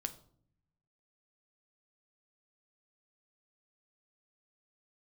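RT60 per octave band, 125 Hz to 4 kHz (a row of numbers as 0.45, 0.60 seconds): 1.4, 1.1, 0.65, 0.50, 0.40, 0.40 seconds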